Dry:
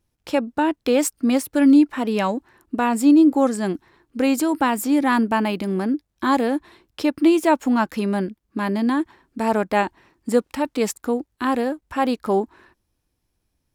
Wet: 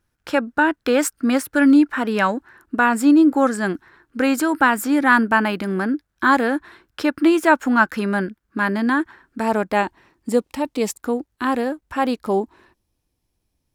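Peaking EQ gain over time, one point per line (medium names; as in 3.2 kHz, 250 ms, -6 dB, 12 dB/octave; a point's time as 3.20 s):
peaking EQ 1.5 kHz 0.67 oct
+12.5 dB
from 9.41 s +2 dB
from 10.29 s -5 dB
from 10.99 s +3 dB
from 12.18 s -4 dB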